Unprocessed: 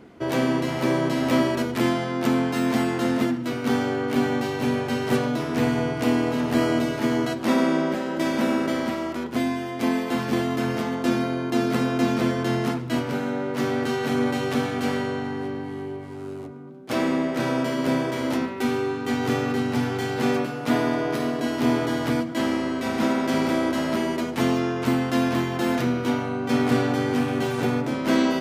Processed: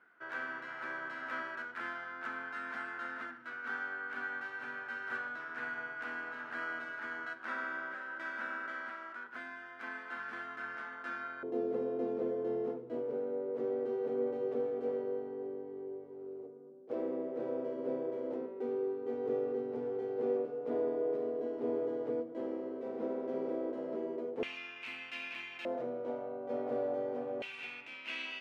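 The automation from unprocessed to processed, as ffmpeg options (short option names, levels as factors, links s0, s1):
-af "asetnsamples=n=441:p=0,asendcmd='11.43 bandpass f 460;24.43 bandpass f 2500;25.65 bandpass f 560;27.42 bandpass f 2600',bandpass=f=1500:t=q:w=7.3:csg=0"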